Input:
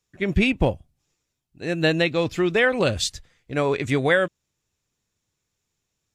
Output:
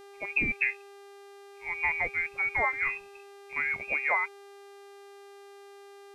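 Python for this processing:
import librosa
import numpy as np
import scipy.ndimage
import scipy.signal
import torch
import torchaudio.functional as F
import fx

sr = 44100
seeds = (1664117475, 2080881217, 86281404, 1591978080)

y = fx.noise_reduce_blind(x, sr, reduce_db=7)
y = fx.freq_invert(y, sr, carrier_hz=2600)
y = fx.dmg_buzz(y, sr, base_hz=400.0, harmonics=33, level_db=-42.0, tilt_db=-7, odd_only=False)
y = y * 10.0 ** (-8.0 / 20.0)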